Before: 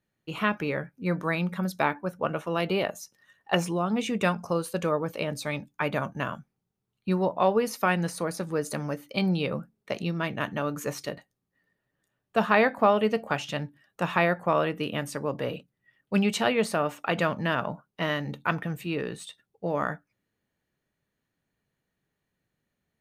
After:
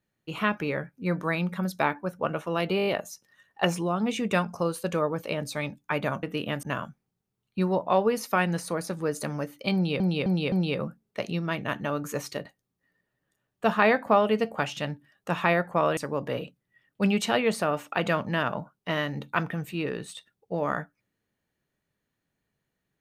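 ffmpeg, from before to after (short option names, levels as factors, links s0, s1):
-filter_complex "[0:a]asplit=12[s0][s1][s2][s3][s4][s5][s6][s7][s8][s9][s10][s11];[s0]atrim=end=2.792[s12];[s1]atrim=start=2.768:end=2.792[s13];[s2]atrim=start=2.768:end=2.792[s14];[s3]atrim=start=2.768:end=2.792[s15];[s4]atrim=start=2.768:end=2.792[s16];[s5]atrim=start=2.768:end=6.132[s17];[s6]atrim=start=14.688:end=15.092[s18];[s7]atrim=start=6.128:end=9.502[s19];[s8]atrim=start=9.238:end=9.502[s20];[s9]atrim=start=9.238:end=9.502[s21];[s10]atrim=start=9.238:end=14.692[s22];[s11]atrim=start=15.088[s23];[s12][s13]acrossfade=d=0.004:c1=hsin:c2=hsin[s24];[s24][s14]acrossfade=d=0.004:c1=hsin:c2=hsin[s25];[s25][s15]acrossfade=d=0.004:c1=hsin:c2=hsin[s26];[s26][s16]acrossfade=d=0.004:c1=hsin:c2=hsin[s27];[s27][s17]acrossfade=d=0.004:c1=hsin:c2=hsin[s28];[s28][s18]acrossfade=d=0.004:c1=hsin:c2=hsin[s29];[s29][s19]acrossfade=d=0.004:c1=hsin:c2=hsin[s30];[s30][s20]acrossfade=d=0.004:c1=hsin:c2=hsin[s31];[s31][s21]acrossfade=d=0.004:c1=hsin:c2=hsin[s32];[s32][s22]acrossfade=d=0.004:c1=hsin:c2=hsin[s33];[s33][s23]acrossfade=d=0.004:c1=hsin:c2=hsin"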